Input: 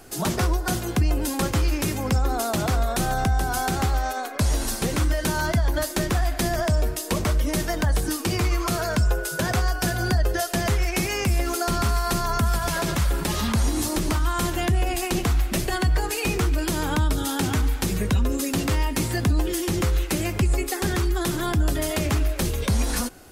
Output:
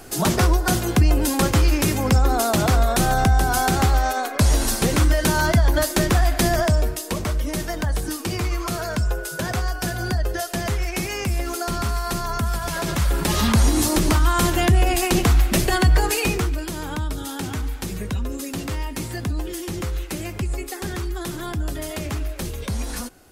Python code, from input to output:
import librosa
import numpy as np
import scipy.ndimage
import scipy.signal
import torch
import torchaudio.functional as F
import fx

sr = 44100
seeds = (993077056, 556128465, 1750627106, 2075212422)

y = fx.gain(x, sr, db=fx.line((6.55, 5.0), (7.15, -1.5), (12.69, -1.5), (13.44, 5.5), (16.14, 5.5), (16.67, -4.5)))